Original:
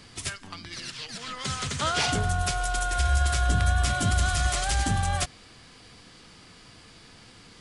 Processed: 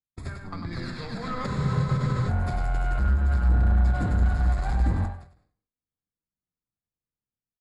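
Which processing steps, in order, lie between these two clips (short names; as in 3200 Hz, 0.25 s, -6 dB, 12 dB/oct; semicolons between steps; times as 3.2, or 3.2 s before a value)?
low shelf 240 Hz +7.5 dB; gate -39 dBFS, range -58 dB; AGC gain up to 8.5 dB; running mean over 15 samples; compressor 1.5:1, threshold -28 dBFS, peak gain reduction 7.5 dB; soft clip -22 dBFS, distortion -10 dB; on a send: echo 99 ms -5.5 dB; on the sum: non-linear reverb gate 0.22 s falling, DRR 9 dB; spectral freeze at 1.49, 0.80 s; ending taper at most 110 dB/s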